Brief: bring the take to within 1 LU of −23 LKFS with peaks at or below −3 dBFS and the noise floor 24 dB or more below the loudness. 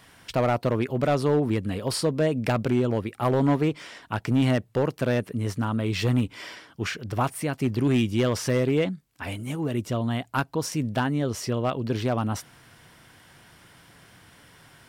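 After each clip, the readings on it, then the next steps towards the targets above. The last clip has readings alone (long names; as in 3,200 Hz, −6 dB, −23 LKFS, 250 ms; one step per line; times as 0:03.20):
share of clipped samples 0.9%; peaks flattened at −15.5 dBFS; integrated loudness −26.0 LKFS; sample peak −15.5 dBFS; target loudness −23.0 LKFS
→ clipped peaks rebuilt −15.5 dBFS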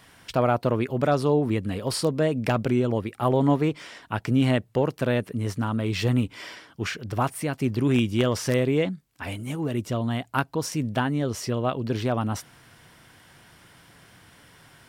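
share of clipped samples 0.0%; integrated loudness −25.5 LKFS; sample peak −6.5 dBFS; target loudness −23.0 LKFS
→ level +2.5 dB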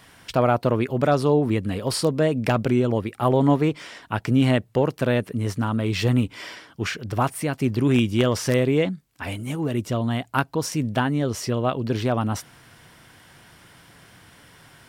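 integrated loudness −23.0 LKFS; sample peak −4.0 dBFS; background noise floor −52 dBFS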